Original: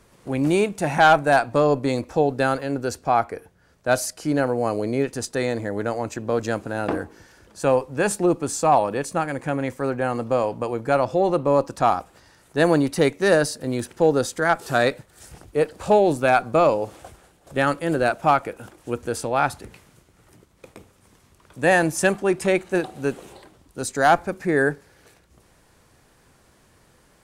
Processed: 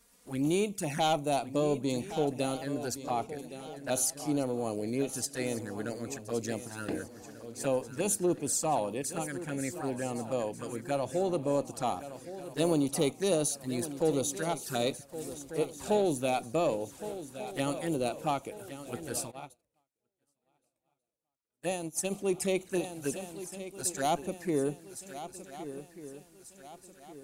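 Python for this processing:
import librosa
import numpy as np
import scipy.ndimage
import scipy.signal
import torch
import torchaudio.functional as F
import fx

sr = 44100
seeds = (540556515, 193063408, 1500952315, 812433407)

p1 = fx.env_flanger(x, sr, rest_ms=4.4, full_db=-18.5)
p2 = fx.dynamic_eq(p1, sr, hz=250.0, q=0.71, threshold_db=-32.0, ratio=4.0, max_db=5)
p3 = 10.0 ** (-14.0 / 20.0) * np.tanh(p2 / 10.0 ** (-14.0 / 20.0))
p4 = p2 + (p3 * 10.0 ** (-10.5 / 20.0))
p5 = librosa.effects.preemphasis(p4, coef=0.8, zi=[0.0])
p6 = p5 + fx.echo_swing(p5, sr, ms=1490, ratio=3, feedback_pct=40, wet_db=-13.0, dry=0)
y = fx.upward_expand(p6, sr, threshold_db=-48.0, expansion=2.5, at=(19.3, 22.1), fade=0.02)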